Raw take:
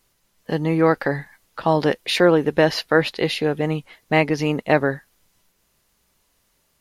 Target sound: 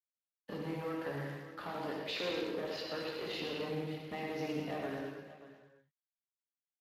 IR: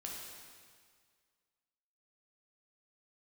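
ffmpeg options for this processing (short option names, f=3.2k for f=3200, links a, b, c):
-filter_complex "[0:a]acrossover=split=220[a][b];[a]alimiter=level_in=3.5dB:limit=-24dB:level=0:latency=1,volume=-3.5dB[c];[c][b]amix=inputs=2:normalize=0,acompressor=threshold=-26dB:ratio=6,aresample=16000,asoftclip=type=tanh:threshold=-26dB,aresample=44100,acrusher=bits=7:mix=0:aa=0.5,aeval=exprs='sgn(val(0))*max(abs(val(0))-0.00237,0)':c=same,aecho=1:1:85|110|176|580:0.237|0.398|0.224|0.188[d];[1:a]atrim=start_sample=2205,afade=t=out:st=0.39:d=0.01,atrim=end_sample=17640[e];[d][e]afir=irnorm=-1:irlink=0,volume=-3.5dB" -ar 32000 -c:a libspeex -b:a 24k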